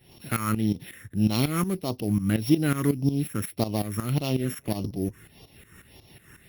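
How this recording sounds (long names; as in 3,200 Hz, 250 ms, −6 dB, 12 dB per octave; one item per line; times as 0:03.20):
a buzz of ramps at a fixed pitch in blocks of 8 samples
phaser sweep stages 4, 1.7 Hz, lowest notch 740–1,500 Hz
tremolo saw up 5.5 Hz, depth 80%
Opus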